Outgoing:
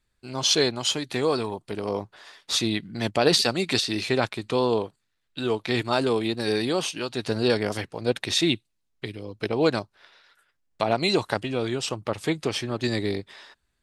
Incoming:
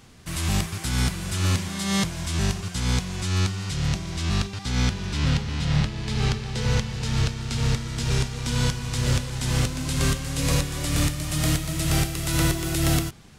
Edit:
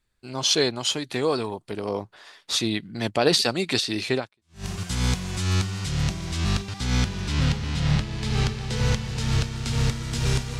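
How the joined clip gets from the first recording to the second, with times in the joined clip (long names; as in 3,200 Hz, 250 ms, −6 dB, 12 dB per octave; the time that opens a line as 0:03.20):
outgoing
0:04.43: continue with incoming from 0:02.28, crossfade 0.52 s exponential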